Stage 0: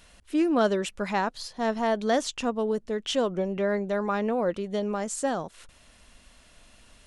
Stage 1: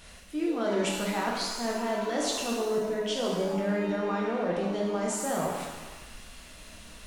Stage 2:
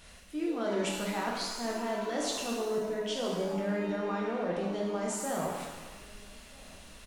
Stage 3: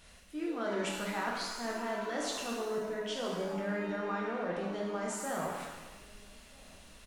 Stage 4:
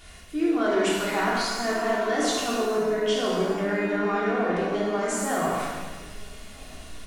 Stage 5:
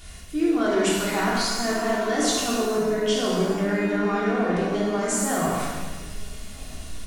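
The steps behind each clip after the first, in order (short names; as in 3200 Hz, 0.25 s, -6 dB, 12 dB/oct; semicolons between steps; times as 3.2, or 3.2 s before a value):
reverse; compressor 6:1, threshold -34 dBFS, peak gain reduction 15 dB; reverse; shimmer reverb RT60 1.2 s, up +7 st, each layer -8 dB, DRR -3 dB; gain +3 dB
outdoor echo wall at 220 m, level -23 dB; gain -3.5 dB
dynamic EQ 1500 Hz, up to +6 dB, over -52 dBFS, Q 1.2; gain -4 dB
shoebox room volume 2900 m³, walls furnished, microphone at 3.3 m; gain +7.5 dB
tone controls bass +7 dB, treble +6 dB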